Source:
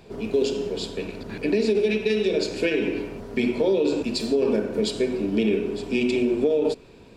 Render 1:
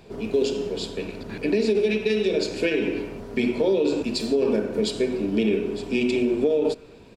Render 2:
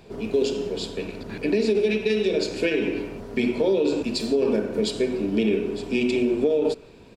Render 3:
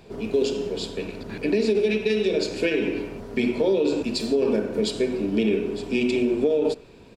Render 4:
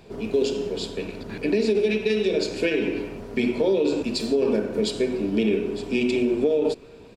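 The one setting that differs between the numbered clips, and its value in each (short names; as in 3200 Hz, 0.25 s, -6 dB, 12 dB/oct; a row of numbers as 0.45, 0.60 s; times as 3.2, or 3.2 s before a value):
speakerphone echo, time: 0.25, 0.17, 0.1, 0.39 s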